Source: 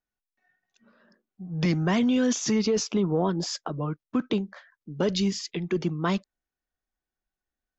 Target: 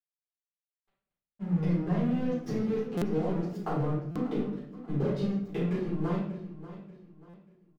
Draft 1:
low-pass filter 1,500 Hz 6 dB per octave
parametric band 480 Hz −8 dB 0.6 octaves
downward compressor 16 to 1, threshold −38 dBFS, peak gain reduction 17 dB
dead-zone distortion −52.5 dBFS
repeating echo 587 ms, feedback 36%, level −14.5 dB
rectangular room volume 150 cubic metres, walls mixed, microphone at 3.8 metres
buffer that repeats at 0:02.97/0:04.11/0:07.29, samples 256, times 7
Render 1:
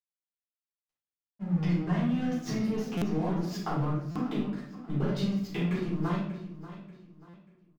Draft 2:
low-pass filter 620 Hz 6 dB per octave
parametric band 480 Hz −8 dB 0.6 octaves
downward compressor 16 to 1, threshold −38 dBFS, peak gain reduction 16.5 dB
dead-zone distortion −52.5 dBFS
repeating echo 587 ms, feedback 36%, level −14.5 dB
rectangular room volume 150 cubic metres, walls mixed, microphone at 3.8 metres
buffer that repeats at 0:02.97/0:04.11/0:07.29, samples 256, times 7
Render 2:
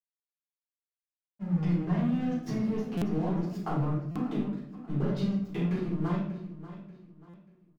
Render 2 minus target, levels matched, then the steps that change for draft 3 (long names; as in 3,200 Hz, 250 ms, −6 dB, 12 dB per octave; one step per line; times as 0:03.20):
500 Hz band −4.5 dB
change: parametric band 480 Hz +3 dB 0.6 octaves